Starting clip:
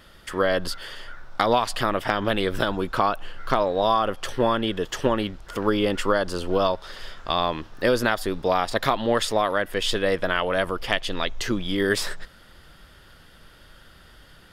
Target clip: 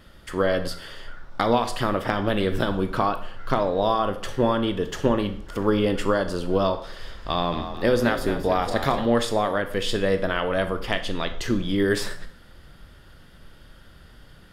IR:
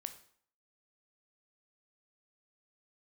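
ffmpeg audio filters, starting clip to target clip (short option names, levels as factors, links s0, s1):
-filter_complex "[0:a]lowshelf=f=460:g=7.5,asettb=1/sr,asplit=3[s0][s1][s2];[s0]atrim=end=6.804[s3];[s1]atrim=start=6.8:end=9.05,asetpts=PTS-STARTPTS,afade=t=in:d=0.004:c=qsin,afade=t=out:st=2.246:d=0.004:c=qsin,asplit=6[s4][s5][s6][s7][s8][s9];[s5]adelay=221,afreqshift=35,volume=0.316[s10];[s6]adelay=442,afreqshift=70,volume=0.151[s11];[s7]adelay=663,afreqshift=105,volume=0.0724[s12];[s8]adelay=884,afreqshift=140,volume=0.0351[s13];[s9]adelay=1105,afreqshift=175,volume=0.0168[s14];[s4][s10][s11][s12][s13][s14]amix=inputs=6:normalize=0,atrim=end_sample=99225[s15];[s2]atrim=start=9.046[s16];[s3][s15]acrossfade=d=0.004:c1=hsin:c2=qsin[s17];[s17][s16]acrossfade=d=0.004:c1=qsin:c2=hsin[s18];[1:a]atrim=start_sample=2205[s19];[s18][s19]afir=irnorm=-1:irlink=0"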